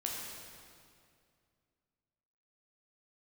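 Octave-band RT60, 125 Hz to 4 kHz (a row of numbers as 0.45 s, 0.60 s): 2.8 s, 2.6 s, 2.4 s, 2.2 s, 2.0 s, 1.9 s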